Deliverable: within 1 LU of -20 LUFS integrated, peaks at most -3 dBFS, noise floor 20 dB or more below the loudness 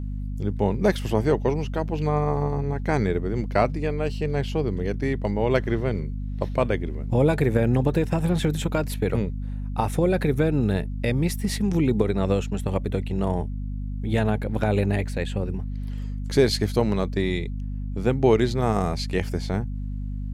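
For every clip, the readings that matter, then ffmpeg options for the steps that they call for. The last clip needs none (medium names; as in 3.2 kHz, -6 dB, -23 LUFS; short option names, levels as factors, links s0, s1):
hum 50 Hz; highest harmonic 250 Hz; hum level -27 dBFS; loudness -25.0 LUFS; peak level -6.0 dBFS; loudness target -20.0 LUFS
-> -af "bandreject=f=50:t=h:w=6,bandreject=f=100:t=h:w=6,bandreject=f=150:t=h:w=6,bandreject=f=200:t=h:w=6,bandreject=f=250:t=h:w=6"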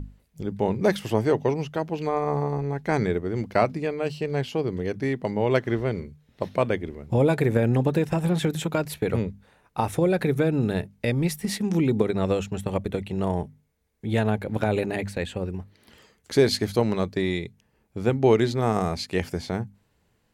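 hum not found; loudness -25.5 LUFS; peak level -7.0 dBFS; loudness target -20.0 LUFS
-> -af "volume=1.88,alimiter=limit=0.708:level=0:latency=1"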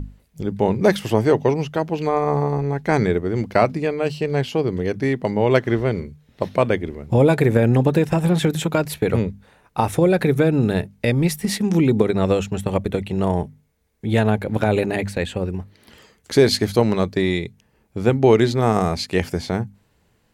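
loudness -20.0 LUFS; peak level -3.0 dBFS; noise floor -62 dBFS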